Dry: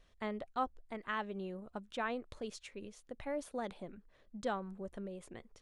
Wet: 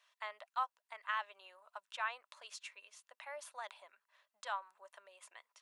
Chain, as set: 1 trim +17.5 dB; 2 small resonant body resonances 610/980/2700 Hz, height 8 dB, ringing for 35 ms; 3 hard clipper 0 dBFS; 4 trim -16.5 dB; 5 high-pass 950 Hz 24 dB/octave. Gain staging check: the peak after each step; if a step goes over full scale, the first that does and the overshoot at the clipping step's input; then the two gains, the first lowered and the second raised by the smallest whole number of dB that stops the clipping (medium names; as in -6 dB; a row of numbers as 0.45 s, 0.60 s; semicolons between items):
-6.0 dBFS, -4.5 dBFS, -4.5 dBFS, -21.0 dBFS, -24.0 dBFS; nothing clips